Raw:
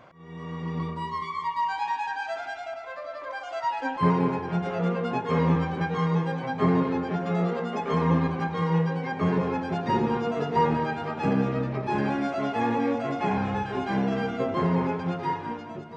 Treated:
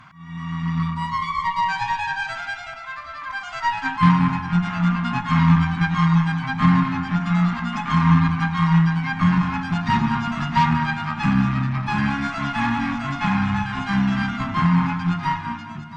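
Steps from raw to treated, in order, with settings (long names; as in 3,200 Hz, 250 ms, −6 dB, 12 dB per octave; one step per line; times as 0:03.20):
harmonic generator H 8 −24 dB, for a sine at −9.5 dBFS
Chebyshev band-stop filter 200–1,100 Hz, order 2
level +8.5 dB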